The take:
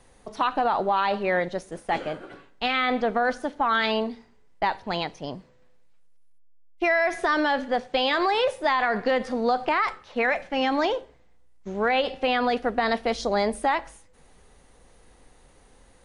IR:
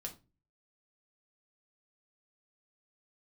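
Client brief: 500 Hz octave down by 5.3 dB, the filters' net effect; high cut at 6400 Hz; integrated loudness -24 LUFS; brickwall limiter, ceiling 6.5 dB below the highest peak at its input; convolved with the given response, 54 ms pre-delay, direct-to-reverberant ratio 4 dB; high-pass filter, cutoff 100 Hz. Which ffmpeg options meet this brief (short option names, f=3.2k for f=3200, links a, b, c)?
-filter_complex "[0:a]highpass=100,lowpass=6.4k,equalizer=f=500:t=o:g=-6.5,alimiter=limit=-19dB:level=0:latency=1,asplit=2[a][b];[1:a]atrim=start_sample=2205,adelay=54[c];[b][c]afir=irnorm=-1:irlink=0,volume=-1.5dB[d];[a][d]amix=inputs=2:normalize=0,volume=4dB"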